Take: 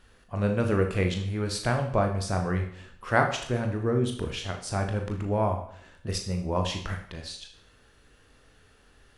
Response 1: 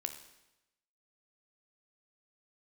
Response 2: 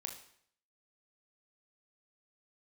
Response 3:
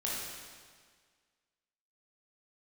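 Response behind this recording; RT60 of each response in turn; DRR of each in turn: 2; 0.95, 0.65, 1.7 seconds; 7.0, 3.0, −6.0 decibels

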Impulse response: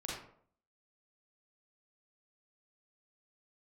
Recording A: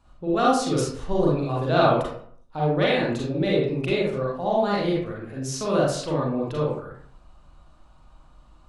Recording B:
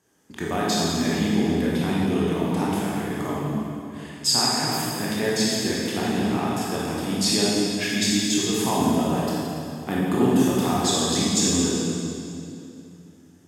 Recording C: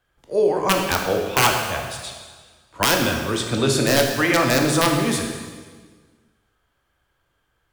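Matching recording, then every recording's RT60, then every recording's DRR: A; 0.60, 2.7, 1.6 seconds; −5.0, −6.5, 1.0 decibels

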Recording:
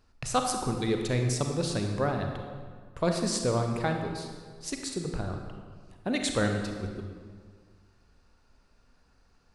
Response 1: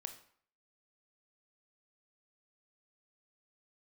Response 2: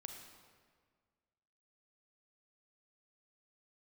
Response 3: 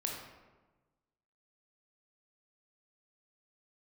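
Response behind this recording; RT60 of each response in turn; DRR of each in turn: 2; 0.55, 1.7, 1.2 seconds; 7.0, 3.5, −1.0 decibels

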